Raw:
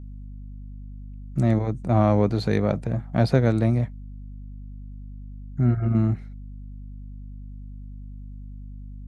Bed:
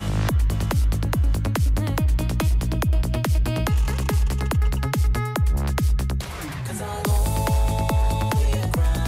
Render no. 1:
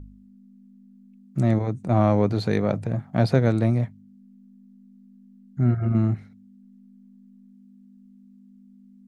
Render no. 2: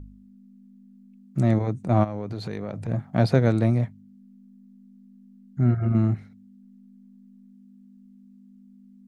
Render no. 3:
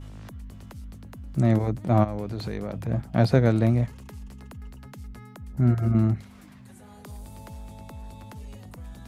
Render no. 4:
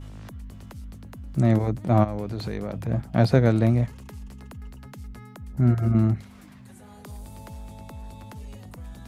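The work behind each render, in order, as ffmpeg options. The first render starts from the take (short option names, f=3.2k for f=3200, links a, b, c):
-af "bandreject=f=50:t=h:w=4,bandreject=f=100:t=h:w=4,bandreject=f=150:t=h:w=4"
-filter_complex "[0:a]asplit=3[a][b][c];[a]afade=t=out:st=2.03:d=0.02[d];[b]acompressor=threshold=-28dB:ratio=6:attack=3.2:release=140:knee=1:detection=peak,afade=t=in:st=2.03:d=0.02,afade=t=out:st=2.87:d=0.02[e];[c]afade=t=in:st=2.87:d=0.02[f];[d][e][f]amix=inputs=3:normalize=0"
-filter_complex "[1:a]volume=-21dB[a];[0:a][a]amix=inputs=2:normalize=0"
-af "volume=1dB"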